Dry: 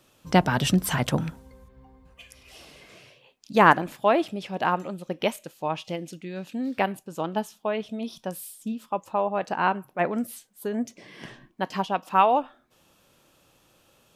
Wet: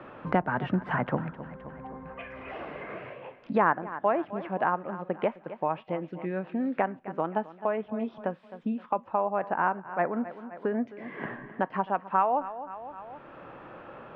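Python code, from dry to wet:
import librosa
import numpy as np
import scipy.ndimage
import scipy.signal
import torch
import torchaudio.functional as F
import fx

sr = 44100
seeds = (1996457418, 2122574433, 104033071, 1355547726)

p1 = scipy.signal.sosfilt(scipy.signal.butter(4, 1800.0, 'lowpass', fs=sr, output='sos'), x)
p2 = fx.low_shelf(p1, sr, hz=380.0, db=-6.5)
p3 = p2 + fx.echo_feedback(p2, sr, ms=260, feedback_pct=36, wet_db=-18.0, dry=0)
y = fx.band_squash(p3, sr, depth_pct=70)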